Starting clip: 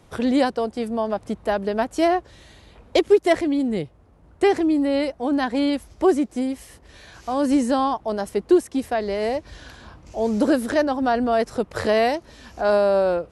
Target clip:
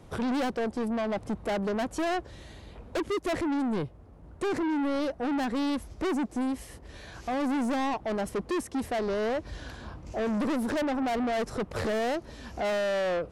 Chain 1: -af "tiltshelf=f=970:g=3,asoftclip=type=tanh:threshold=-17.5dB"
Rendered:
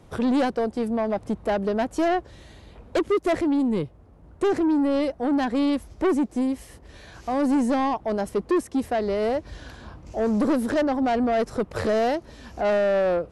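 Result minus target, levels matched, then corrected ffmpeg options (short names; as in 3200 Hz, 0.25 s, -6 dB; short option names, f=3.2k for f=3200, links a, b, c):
soft clip: distortion -5 dB
-af "tiltshelf=f=970:g=3,asoftclip=type=tanh:threshold=-26.5dB"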